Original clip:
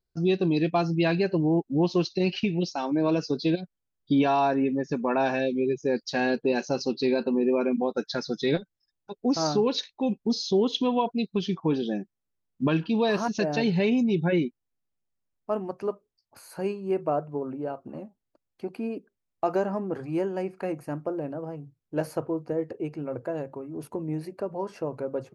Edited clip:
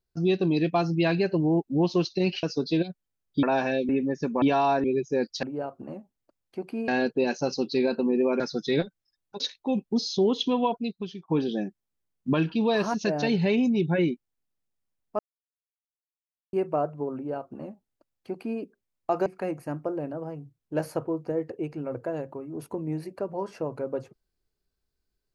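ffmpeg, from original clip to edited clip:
-filter_complex "[0:a]asplit=14[a][b][c][d][e][f][g][h][i][j][k][l][m][n];[a]atrim=end=2.432[o];[b]atrim=start=3.158:end=4.162[p];[c]atrim=start=5.108:end=5.572[q];[d]atrim=start=4.578:end=5.112[r];[e]atrim=start=4.158:end=4.582[s];[f]atrim=start=5.568:end=6.162[t];[g]atrim=start=17.488:end=18.942[u];[h]atrim=start=6.158:end=7.682[v];[i]atrim=start=8.148:end=9.152[w];[j]atrim=start=9.738:end=11.62,asetpts=PTS-STARTPTS,afade=t=out:st=1.252:d=0.63:silence=0.0891251[x];[k]atrim=start=11.62:end=15.53,asetpts=PTS-STARTPTS,afade=t=in:d=0.004:c=hsin:silence=0.0891251,afade=t=out:st=3.906:d=0.004:c=hsin[y];[l]atrim=start=15.53:end=16.87,asetpts=PTS-STARTPTS,volume=0[z];[m]atrim=start=16.87:end=19.602,asetpts=PTS-STARTPTS,afade=t=in:d=0.004:c=hsin[aa];[n]atrim=start=20.468[ab];[o][p]acrossfade=d=0.004:c1=hsin:c2=hsin[ac];[ac][q]acrossfade=d=0.004:c1=hsin:c2=hsin[ad];[ad][r]acrossfade=d=0.004:c1=hsin:c2=hsin[ae];[ae][s]acrossfade=d=0.004:c1=hsin:c2=hsin[af];[af][t]acrossfade=d=0.004:c1=hsin:c2=hsin[ag];[ag][u]acrossfade=d=0.004:c1=hsin:c2=hsin[ah];[ah][v]acrossfade=d=0.004:c1=hsin:c2=hsin[ai];[ai][w]acrossfade=d=0.004:c1=hsin:c2=hsin[aj];[x][y][z][aa]concat=n=4:v=0:a=1[ak];[aj][ak]acrossfade=d=0.004:c1=hsin:c2=hsin[al];[al][ab]acrossfade=d=0.004:c1=hsin:c2=hsin"

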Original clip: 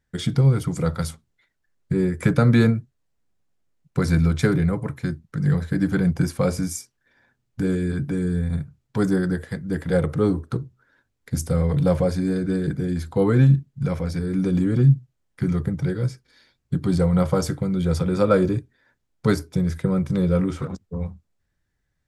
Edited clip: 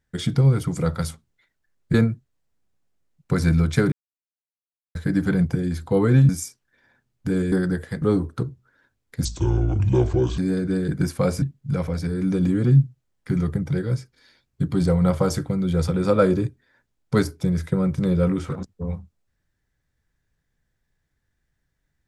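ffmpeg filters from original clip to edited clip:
-filter_complex "[0:a]asplit=12[a][b][c][d][e][f][g][h][i][j][k][l];[a]atrim=end=1.942[m];[b]atrim=start=2.598:end=4.58,asetpts=PTS-STARTPTS,afade=t=out:st=1.978:d=0.004:c=hsin[n];[c]atrim=start=4.58:end=5.61,asetpts=PTS-STARTPTS,volume=0[o];[d]atrim=start=5.61:end=6.212,asetpts=PTS-STARTPTS,afade=t=in:d=0.004:c=hsin[p];[e]atrim=start=12.798:end=13.542[q];[f]atrim=start=6.618:end=7.852[r];[g]atrim=start=9.118:end=9.622[s];[h]atrim=start=10.158:end=11.394[t];[i]atrim=start=11.39:end=12.17,asetpts=PTS-STARTPTS,asetrate=30429,aresample=44100,atrim=end_sample=49852,asetpts=PTS-STARTPTS[u];[j]atrim=start=12.166:end=12.802[v];[k]atrim=start=6.208:end=6.622[w];[l]atrim=start=13.538[x];[n][o][p]concat=n=3:v=0:a=1[y];[m][y]acrossfade=d=0.004:c1=hsin:c2=hsin[z];[z][q]acrossfade=d=0.004:c1=hsin:c2=hsin[aa];[aa][r]acrossfade=d=0.004:c1=hsin:c2=hsin[ab];[ab][s]acrossfade=d=0.004:c1=hsin:c2=hsin[ac];[ac][t]acrossfade=d=0.004:c1=hsin:c2=hsin[ad];[ad][u]acrossfade=d=0.004:c1=hsin:c2=hsin[ae];[ae][v]acrossfade=d=0.004:c1=hsin:c2=hsin[af];[af][w]acrossfade=d=0.004:c1=hsin:c2=hsin[ag];[ag][x]acrossfade=d=0.004:c1=hsin:c2=hsin"

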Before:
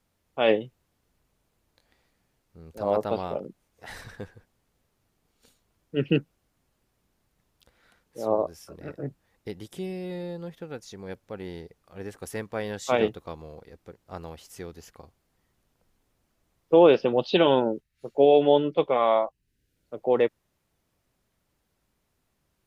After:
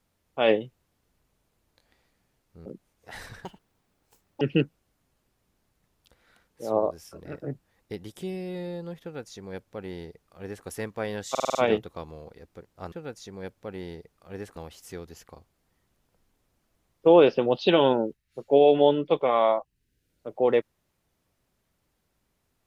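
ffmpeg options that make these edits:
-filter_complex "[0:a]asplit=11[a][b][c][d][e][f][g][h][i][j][k];[a]atrim=end=2.662[l];[b]atrim=start=3.408:end=4.204[m];[c]atrim=start=4.2:end=5.97,asetpts=PTS-STARTPTS,asetrate=81144,aresample=44100,atrim=end_sample=42422,asetpts=PTS-STARTPTS[n];[d]atrim=start=5.966:end=12.912[o];[e]atrim=start=12.858:end=12.912[p];[f]atrim=start=12.858:end=12.912[q];[g]atrim=start=12.858:end=12.912[r];[h]atrim=start=12.858:end=12.912[s];[i]atrim=start=12.858:end=14.232[t];[j]atrim=start=10.578:end=12.222[u];[k]atrim=start=14.228[v];[l][m]acrossfade=d=0.004:c1=hsin:c2=hsin[w];[w][n]acrossfade=d=0.004:c1=hsin:c2=hsin[x];[x][o]acrossfade=d=0.004:c1=hsin:c2=hsin[y];[y][p]acrossfade=d=0.004:c1=hsin:c2=hsin[z];[z][q]acrossfade=d=0.004:c1=hsin:c2=hsin[aa];[aa][r]acrossfade=d=0.004:c1=hsin:c2=hsin[ab];[ab][s]acrossfade=d=0.004:c1=hsin:c2=hsin[ac];[ac][t]acrossfade=d=0.004:c1=hsin:c2=hsin[ad];[ad][u]acrossfade=d=0.004:c1=hsin:c2=hsin[ae];[ae][v]acrossfade=d=0.004:c1=hsin:c2=hsin"

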